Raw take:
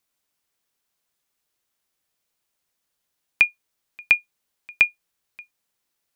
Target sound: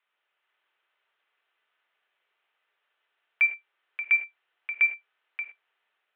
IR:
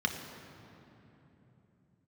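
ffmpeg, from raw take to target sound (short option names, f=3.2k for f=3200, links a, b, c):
-filter_complex "[0:a]alimiter=limit=-11dB:level=0:latency=1:release=234,dynaudnorm=f=260:g=3:m=3dB,asoftclip=type=tanh:threshold=-22dB[a];[1:a]atrim=start_sample=2205,atrim=end_sample=6174,asetrate=48510,aresample=44100[b];[a][b]afir=irnorm=-1:irlink=0,highpass=f=550:t=q:w=0.5412,highpass=f=550:t=q:w=1.307,lowpass=f=3k:t=q:w=0.5176,lowpass=f=3k:t=q:w=0.7071,lowpass=f=3k:t=q:w=1.932,afreqshift=-86"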